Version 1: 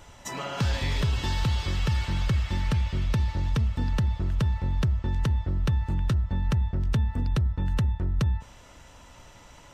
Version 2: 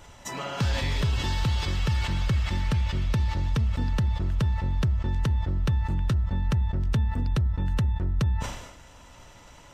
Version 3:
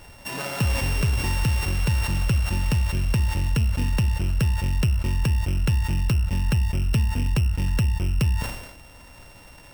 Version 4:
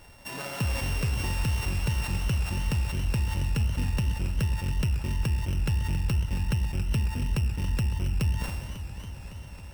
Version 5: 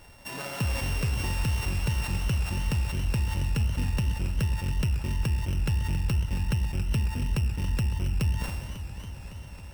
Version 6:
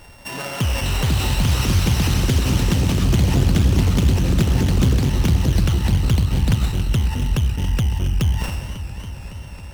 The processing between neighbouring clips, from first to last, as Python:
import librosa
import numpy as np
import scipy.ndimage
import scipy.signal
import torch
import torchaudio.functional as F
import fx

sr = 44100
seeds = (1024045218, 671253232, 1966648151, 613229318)

y1 = fx.sustainer(x, sr, db_per_s=62.0)
y2 = np.r_[np.sort(y1[:len(y1) // 16 * 16].reshape(-1, 16), axis=1).ravel(), y1[len(y1) // 16 * 16:]]
y2 = F.gain(torch.from_numpy(y2), 3.0).numpy()
y3 = fx.echo_warbled(y2, sr, ms=276, feedback_pct=77, rate_hz=2.8, cents=128, wet_db=-12)
y3 = F.gain(torch.from_numpy(y3), -5.5).numpy()
y4 = y3
y5 = fx.echo_pitch(y4, sr, ms=673, semitones=6, count=3, db_per_echo=-3.0)
y5 = fx.doppler_dist(y5, sr, depth_ms=0.5)
y5 = F.gain(torch.from_numpy(y5), 7.5).numpy()